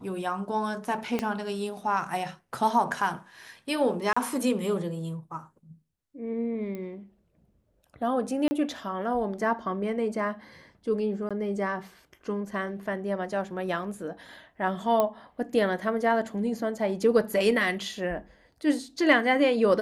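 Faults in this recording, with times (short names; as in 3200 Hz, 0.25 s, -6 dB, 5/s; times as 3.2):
1.19 pop -14 dBFS
4.13–4.17 gap 35 ms
6.75 pop -25 dBFS
8.48–8.51 gap 30 ms
11.29–11.31 gap 16 ms
15 pop -12 dBFS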